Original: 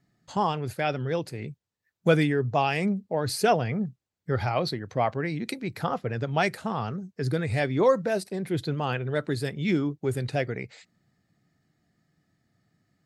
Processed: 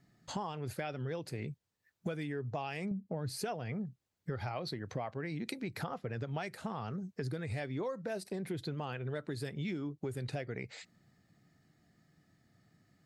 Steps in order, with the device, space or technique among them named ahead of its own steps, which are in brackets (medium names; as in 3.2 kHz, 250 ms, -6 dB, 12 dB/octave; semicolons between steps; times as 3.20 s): 2.91–3.39 s: peaking EQ 160 Hz +11.5 dB 1.5 oct; serial compression, peaks first (compression 6:1, threshold -33 dBFS, peak gain reduction 17 dB; compression 1.5:1, threshold -44 dBFS, peak gain reduction 5.5 dB); trim +2 dB